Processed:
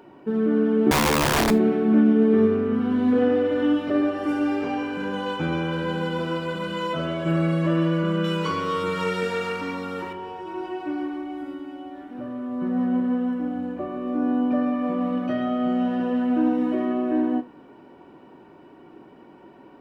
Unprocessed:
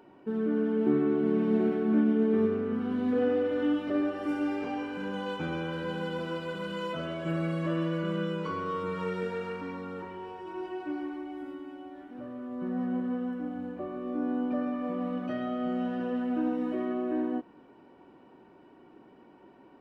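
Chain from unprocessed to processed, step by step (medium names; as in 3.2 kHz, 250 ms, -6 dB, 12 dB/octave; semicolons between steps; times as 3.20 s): 0.91–1.51 s: integer overflow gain 22 dB; 8.24–10.13 s: treble shelf 2.3 kHz +12 dB; gated-style reverb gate 110 ms falling, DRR 12 dB; trim +7 dB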